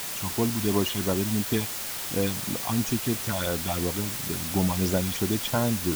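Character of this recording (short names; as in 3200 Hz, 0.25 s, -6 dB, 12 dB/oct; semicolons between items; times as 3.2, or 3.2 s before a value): phasing stages 6, 2.9 Hz, lowest notch 400–4700 Hz; a quantiser's noise floor 6-bit, dither triangular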